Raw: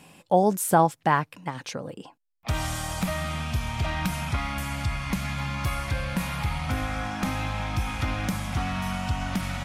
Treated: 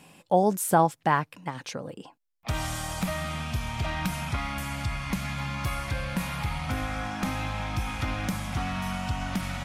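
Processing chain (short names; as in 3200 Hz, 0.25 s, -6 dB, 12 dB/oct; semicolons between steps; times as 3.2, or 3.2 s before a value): bell 75 Hz -2.5 dB; gain -1.5 dB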